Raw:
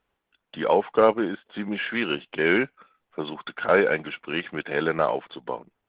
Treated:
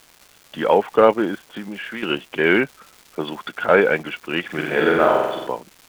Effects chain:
0:01.46–0:02.03: downward compressor, threshold −33 dBFS, peak gain reduction 11.5 dB
surface crackle 530 per second −40 dBFS
0:04.45–0:05.47: flutter between parallel walls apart 7.9 metres, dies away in 1 s
level +4.5 dB

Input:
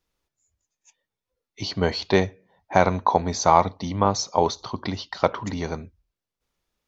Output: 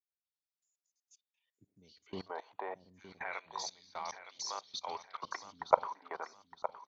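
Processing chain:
three-band delay without the direct sound lows, highs, mids 250/490 ms, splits 300/3,300 Hz
auto-filter band-pass sine 0.3 Hz 900–5,400 Hz
output level in coarse steps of 22 dB
on a send: repeating echo 914 ms, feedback 34%, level −12 dB
on the sum: level +4 dB

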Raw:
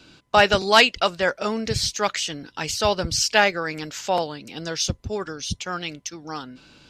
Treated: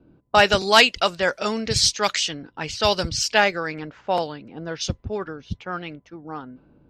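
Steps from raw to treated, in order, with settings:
low-pass that shuts in the quiet parts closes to 490 Hz, open at −18 dBFS
high-shelf EQ 4,000 Hz +3 dB, from 0:01.33 +11.5 dB, from 0:03.09 −2.5 dB

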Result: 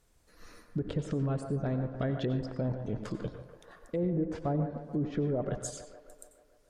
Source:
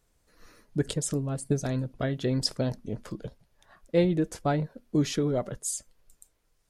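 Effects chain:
treble cut that deepens with the level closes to 650 Hz, closed at −22 dBFS
brickwall limiter −25.5 dBFS, peak gain reduction 12 dB
delay with a band-pass on its return 145 ms, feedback 66%, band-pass 950 Hz, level −9 dB
convolution reverb RT60 0.45 s, pre-delay 87 ms, DRR 10.5 dB
level +1.5 dB

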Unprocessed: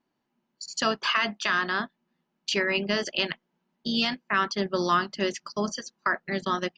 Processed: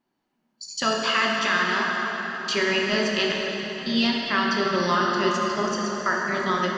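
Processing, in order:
dense smooth reverb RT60 4.8 s, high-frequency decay 0.65×, DRR −2.5 dB

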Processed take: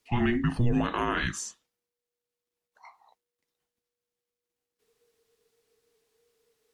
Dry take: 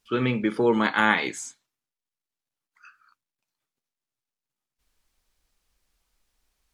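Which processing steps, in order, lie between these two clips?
frequency shifter −480 Hz
brickwall limiter −16.5 dBFS, peak gain reduction 10 dB

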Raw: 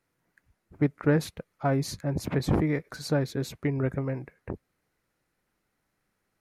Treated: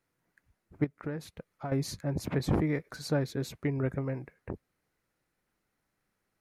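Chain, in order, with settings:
0:00.84–0:01.72: downward compressor 3 to 1, threshold −34 dBFS, peak gain reduction 12 dB
level −3 dB

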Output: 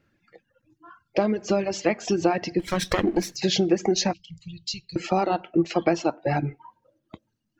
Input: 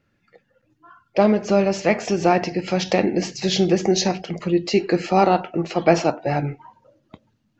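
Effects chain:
0:02.59–0:03.36: lower of the sound and its delayed copy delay 0.53 ms
reverb reduction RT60 1.3 s
0:04.13–0:04.96: elliptic band-stop filter 130–3,500 Hz, stop band 40 dB
downward compressor 12 to 1, threshold −18 dBFS, peak gain reduction 9.5 dB
hollow resonant body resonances 330/1,600 Hz, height 7 dB, ringing for 85 ms

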